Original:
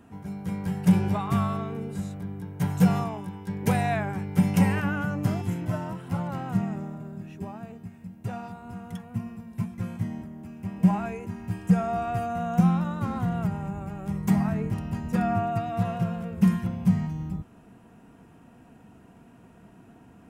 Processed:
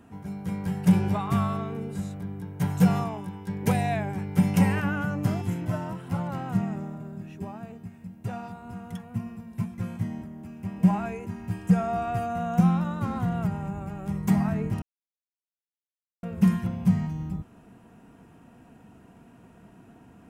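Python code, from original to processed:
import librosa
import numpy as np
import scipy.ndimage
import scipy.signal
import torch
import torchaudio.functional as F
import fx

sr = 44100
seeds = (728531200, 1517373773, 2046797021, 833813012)

y = fx.peak_eq(x, sr, hz=1300.0, db=-8.5, octaves=0.71, at=(3.72, 4.18))
y = fx.edit(y, sr, fx.silence(start_s=14.82, length_s=1.41), tone=tone)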